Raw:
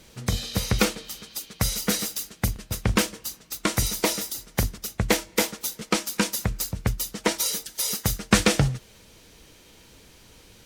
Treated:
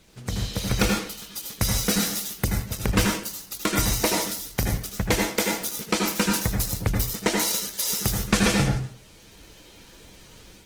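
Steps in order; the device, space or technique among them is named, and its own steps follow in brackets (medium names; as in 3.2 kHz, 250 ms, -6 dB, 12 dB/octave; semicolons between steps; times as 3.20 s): speakerphone in a meeting room (reverberation RT60 0.50 s, pre-delay 75 ms, DRR 0.5 dB; level rider gain up to 5 dB; trim -4 dB; Opus 16 kbps 48 kHz)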